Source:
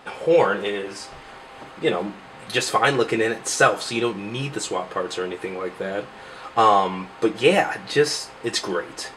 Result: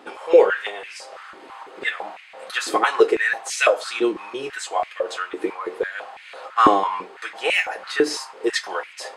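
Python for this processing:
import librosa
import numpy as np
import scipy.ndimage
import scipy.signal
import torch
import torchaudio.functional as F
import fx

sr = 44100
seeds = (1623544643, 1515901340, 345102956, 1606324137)

y = x * (1.0 - 0.31 / 2.0 + 0.31 / 2.0 * np.cos(2.0 * np.pi * 3.3 * (np.arange(len(x)) / sr)))
y = fx.filter_held_highpass(y, sr, hz=6.0, low_hz=310.0, high_hz=2300.0)
y = y * 10.0 ** (-2.0 / 20.0)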